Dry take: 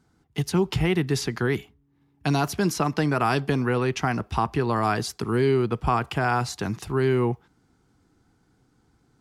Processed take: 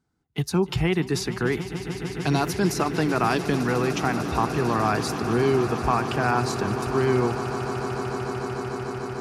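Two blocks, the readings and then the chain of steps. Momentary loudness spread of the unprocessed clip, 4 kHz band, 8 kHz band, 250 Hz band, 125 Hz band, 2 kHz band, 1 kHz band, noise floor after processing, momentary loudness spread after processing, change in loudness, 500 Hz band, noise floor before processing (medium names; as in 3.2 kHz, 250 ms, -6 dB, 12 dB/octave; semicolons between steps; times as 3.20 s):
6 LU, +1.0 dB, +1.5 dB, +1.5 dB, 0.0 dB, +1.0 dB, +1.5 dB, -38 dBFS, 8 LU, 0.0 dB, +1.5 dB, -66 dBFS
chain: spectral noise reduction 11 dB; echo with a slow build-up 149 ms, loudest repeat 8, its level -15 dB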